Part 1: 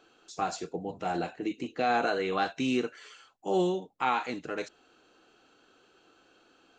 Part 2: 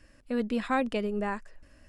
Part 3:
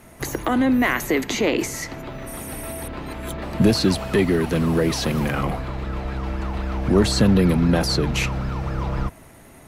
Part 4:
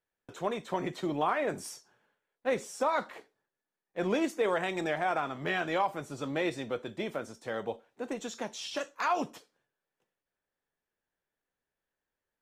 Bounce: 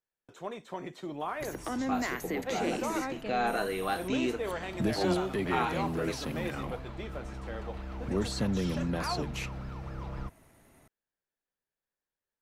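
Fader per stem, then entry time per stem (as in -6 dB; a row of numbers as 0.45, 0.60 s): -3.0, -10.0, -14.0, -6.5 dB; 1.50, 2.30, 1.20, 0.00 s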